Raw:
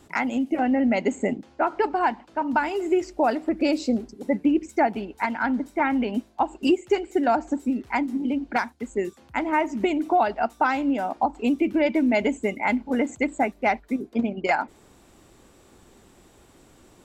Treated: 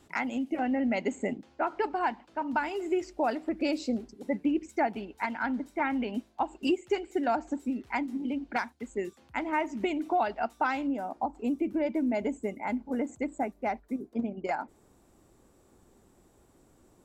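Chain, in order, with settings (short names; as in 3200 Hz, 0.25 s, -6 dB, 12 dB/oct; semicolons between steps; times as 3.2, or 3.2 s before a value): bell 3000 Hz +2 dB 2 oct, from 10.87 s -8.5 dB; gain -7 dB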